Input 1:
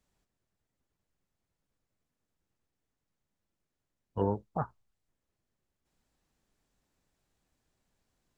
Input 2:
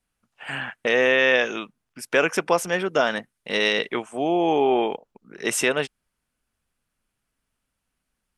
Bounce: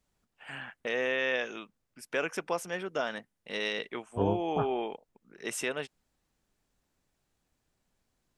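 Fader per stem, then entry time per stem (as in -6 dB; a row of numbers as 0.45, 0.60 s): +0.5, -11.5 dB; 0.00, 0.00 s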